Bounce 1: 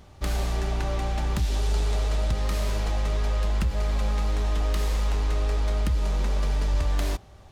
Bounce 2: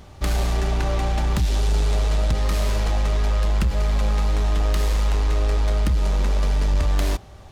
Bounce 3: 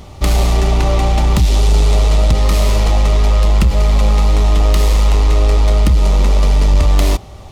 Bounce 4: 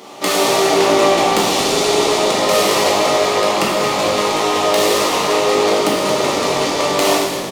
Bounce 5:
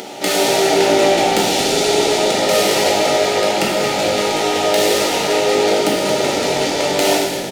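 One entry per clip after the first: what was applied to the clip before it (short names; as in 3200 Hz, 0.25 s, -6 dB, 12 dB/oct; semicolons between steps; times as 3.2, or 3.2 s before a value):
soft clip -18.5 dBFS, distortion -23 dB; gain +6 dB
bell 1600 Hz -11 dB 0.24 oct; gain +9 dB
HPF 260 Hz 24 dB/oct; frequency-shifting echo 0.225 s, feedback 47%, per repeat -56 Hz, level -9.5 dB; plate-style reverb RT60 1.3 s, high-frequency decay 0.85×, DRR -4.5 dB; gain +1.5 dB
upward compressor, threshold -24 dBFS; Butterworth band-stop 1100 Hz, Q 3.4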